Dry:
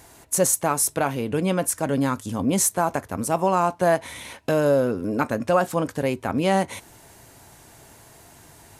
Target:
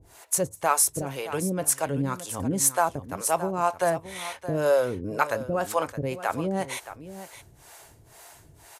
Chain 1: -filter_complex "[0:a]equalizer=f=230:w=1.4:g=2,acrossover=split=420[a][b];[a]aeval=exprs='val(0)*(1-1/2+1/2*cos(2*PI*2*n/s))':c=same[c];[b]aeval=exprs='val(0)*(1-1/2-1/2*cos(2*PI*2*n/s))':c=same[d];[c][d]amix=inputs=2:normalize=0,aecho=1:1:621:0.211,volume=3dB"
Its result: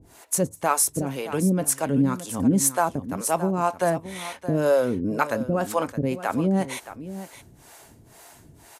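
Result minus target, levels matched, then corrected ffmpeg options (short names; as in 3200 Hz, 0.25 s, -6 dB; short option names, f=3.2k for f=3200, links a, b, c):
250 Hz band +5.5 dB
-filter_complex "[0:a]equalizer=f=230:w=1.4:g=-9,acrossover=split=420[a][b];[a]aeval=exprs='val(0)*(1-1/2+1/2*cos(2*PI*2*n/s))':c=same[c];[b]aeval=exprs='val(0)*(1-1/2-1/2*cos(2*PI*2*n/s))':c=same[d];[c][d]amix=inputs=2:normalize=0,aecho=1:1:621:0.211,volume=3dB"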